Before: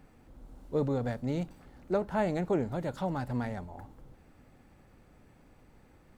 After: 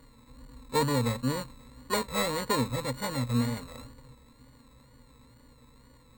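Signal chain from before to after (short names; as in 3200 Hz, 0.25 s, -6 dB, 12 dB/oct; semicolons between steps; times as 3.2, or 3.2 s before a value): sample sorter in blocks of 32 samples; wow and flutter 94 cents; ripple EQ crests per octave 1, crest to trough 15 dB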